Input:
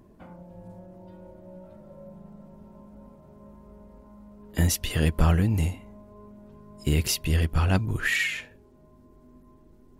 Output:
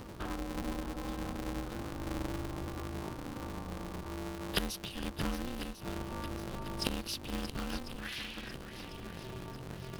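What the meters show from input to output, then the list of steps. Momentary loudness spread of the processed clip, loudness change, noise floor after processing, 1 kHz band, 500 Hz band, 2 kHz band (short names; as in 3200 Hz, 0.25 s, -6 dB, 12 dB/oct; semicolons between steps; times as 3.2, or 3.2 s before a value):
9 LU, -14.5 dB, -47 dBFS, -3.0 dB, -5.0 dB, -12.0 dB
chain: fixed phaser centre 2100 Hz, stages 6; flipped gate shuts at -28 dBFS, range -25 dB; LPF 9000 Hz 12 dB/oct; high shelf 2400 Hz +11 dB; swung echo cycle 1.047 s, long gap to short 1.5:1, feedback 48%, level -11 dB; polarity switched at an audio rate 130 Hz; gain +9.5 dB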